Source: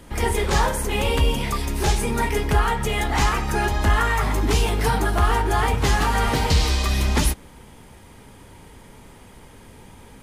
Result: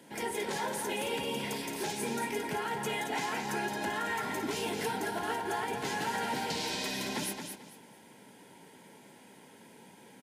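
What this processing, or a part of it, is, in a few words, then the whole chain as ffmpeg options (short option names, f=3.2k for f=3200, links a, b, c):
PA system with an anti-feedback notch: -af "highpass=f=170:w=0.5412,highpass=f=170:w=1.3066,asuperstop=centerf=1200:order=8:qfactor=5.9,alimiter=limit=-17.5dB:level=0:latency=1:release=204,aecho=1:1:222|444|666:0.473|0.114|0.0273,volume=-7.5dB"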